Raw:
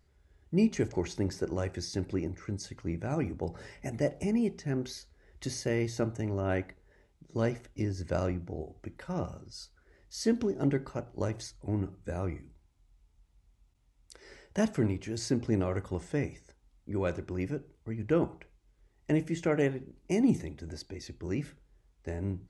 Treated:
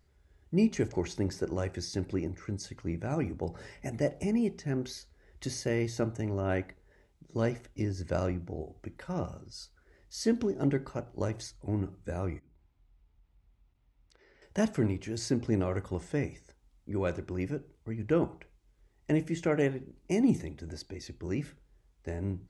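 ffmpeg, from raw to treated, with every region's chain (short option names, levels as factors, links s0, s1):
-filter_complex "[0:a]asettb=1/sr,asplit=3[s0][s1][s2];[s0]atrim=end=12.394[s3];[s1]atrim=start=12.39:end=14.42,asetpts=PTS-STARTPTS,afade=t=in:d=0.004:c=qsin,afade=t=out:st=2.026:d=0.004:c=qsin,lowpass=3300,acompressor=threshold=0.00126:ratio=12:attack=3.2:release=140:knee=1:detection=peak[s4];[s2]atrim=start=14.416[s5];[s3][s4]acrossfade=d=0.004:c1=hsin:c2=qsin[s6];[s6][s5]acrossfade=d=0.004:c1=qsin:c2=hsin"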